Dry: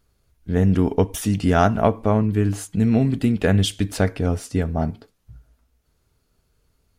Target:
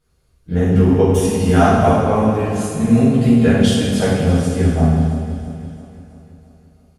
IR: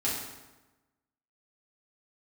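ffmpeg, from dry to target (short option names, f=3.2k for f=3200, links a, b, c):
-filter_complex "[0:a]aecho=1:1:334|668|1002|1336|1670|2004:0.224|0.123|0.0677|0.0372|0.0205|0.0113[a];[1:a]atrim=start_sample=2205,asetrate=25578,aresample=44100[b];[a][b]afir=irnorm=-1:irlink=0,volume=-7dB"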